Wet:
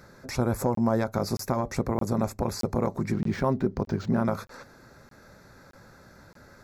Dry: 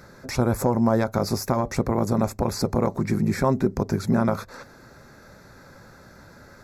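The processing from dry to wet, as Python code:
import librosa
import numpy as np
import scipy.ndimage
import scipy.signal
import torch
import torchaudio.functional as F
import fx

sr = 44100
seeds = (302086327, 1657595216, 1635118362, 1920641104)

y = fx.buffer_crackle(x, sr, first_s=0.75, period_s=0.62, block=1024, kind='zero')
y = fx.resample_linear(y, sr, factor=4, at=(3.12, 4.25))
y = y * 10.0 ** (-4.0 / 20.0)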